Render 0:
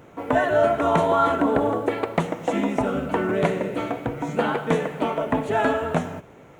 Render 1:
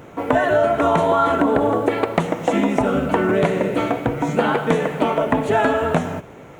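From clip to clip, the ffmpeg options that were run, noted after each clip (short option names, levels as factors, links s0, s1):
-af "acompressor=threshold=0.1:ratio=6,volume=2.24"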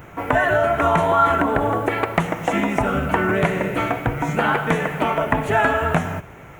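-af "equalizer=f=125:t=o:w=1:g=-3,equalizer=f=250:t=o:w=1:g=-10,equalizer=f=500:t=o:w=1:g=-10,equalizer=f=1000:t=o:w=1:g=-4,equalizer=f=4000:t=o:w=1:g=-10,equalizer=f=8000:t=o:w=1:g=-6,volume=2.37"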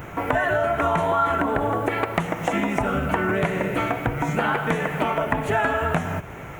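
-af "acompressor=threshold=0.0316:ratio=2,volume=1.68"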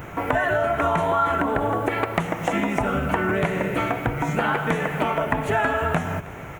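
-af "aecho=1:1:317:0.0944"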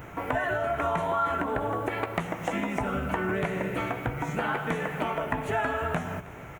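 -filter_complex "[0:a]asplit=2[s0][s1];[s1]adelay=16,volume=0.251[s2];[s0][s2]amix=inputs=2:normalize=0,volume=0.473"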